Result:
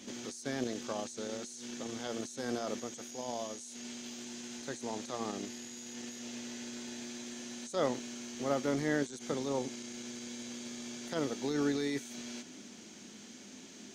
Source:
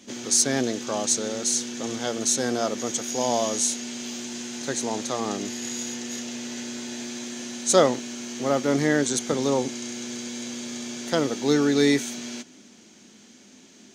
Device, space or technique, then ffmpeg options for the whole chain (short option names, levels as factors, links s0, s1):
de-esser from a sidechain: -filter_complex "[0:a]asplit=2[s0][s1];[s1]highpass=6400,apad=whole_len=615001[s2];[s0][s2]sidechaincompress=threshold=0.00282:ratio=6:attack=2.1:release=29"